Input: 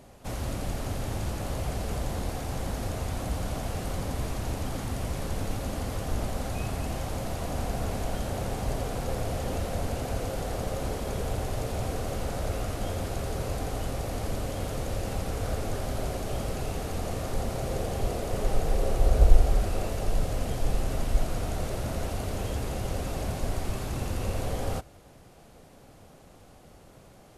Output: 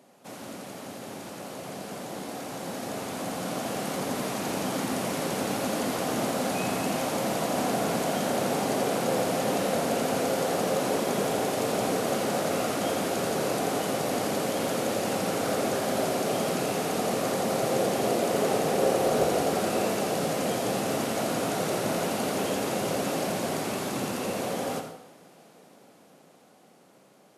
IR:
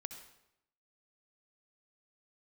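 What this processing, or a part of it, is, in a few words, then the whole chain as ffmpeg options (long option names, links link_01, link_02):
far laptop microphone: -filter_complex "[1:a]atrim=start_sample=2205[link_01];[0:a][link_01]afir=irnorm=-1:irlink=0,highpass=frequency=180:width=0.5412,highpass=frequency=180:width=1.3066,dynaudnorm=framelen=520:gausssize=13:maxgain=11dB"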